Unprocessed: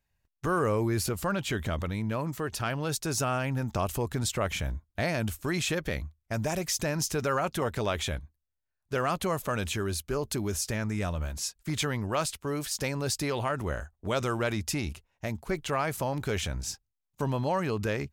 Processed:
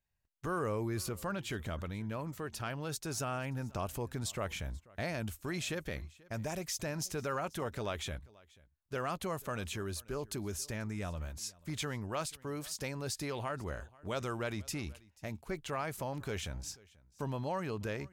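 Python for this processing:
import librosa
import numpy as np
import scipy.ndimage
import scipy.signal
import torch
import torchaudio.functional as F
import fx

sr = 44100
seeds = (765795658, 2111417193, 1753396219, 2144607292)

y = x + 10.0 ** (-23.5 / 20.0) * np.pad(x, (int(486 * sr / 1000.0), 0))[:len(x)]
y = F.gain(torch.from_numpy(y), -8.0).numpy()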